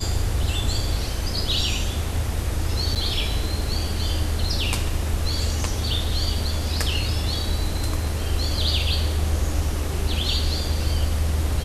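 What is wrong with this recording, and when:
2.95–2.96 gap 7.4 ms

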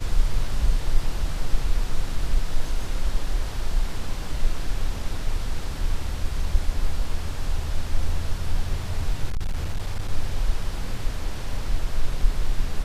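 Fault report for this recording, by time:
9.29–10.12 clipped -20.5 dBFS

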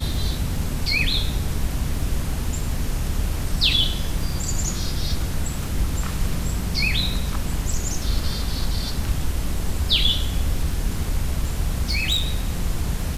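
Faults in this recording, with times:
crackle 11/s -28 dBFS
11.89–12.33 clipped -16.5 dBFS

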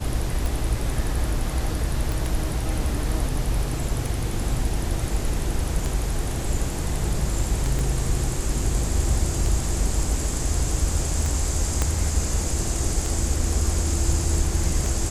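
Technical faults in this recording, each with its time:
tick 33 1/3 rpm
2.12 pop
7.79 pop
11.82 pop -8 dBFS

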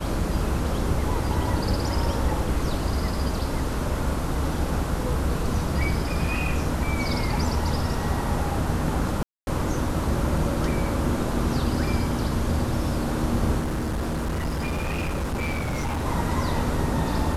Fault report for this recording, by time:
9.23–9.47 gap 0.241 s
13.59–16.06 clipped -23.5 dBFS

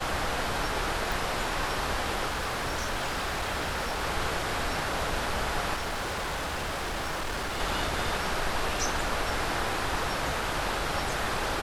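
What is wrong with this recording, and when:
1.12 pop
2.28–4.03 clipped -27 dBFS
5.74–7.61 clipped -29 dBFS

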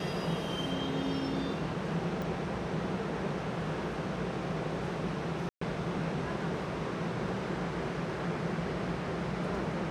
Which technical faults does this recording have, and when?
2.22 pop
5.49–5.61 gap 0.124 s

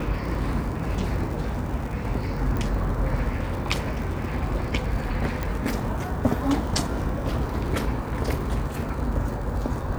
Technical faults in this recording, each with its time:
crackle 100/s -33 dBFS
2.57 pop -17 dBFS
5.43 pop -14 dBFS

